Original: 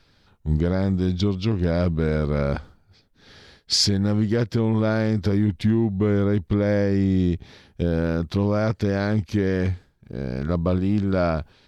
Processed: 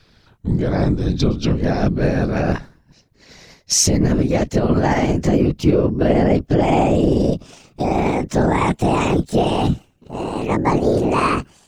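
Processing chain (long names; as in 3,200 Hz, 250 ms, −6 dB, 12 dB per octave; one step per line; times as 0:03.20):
pitch glide at a constant tempo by +11 semitones starting unshifted
random phases in short frames
level +5.5 dB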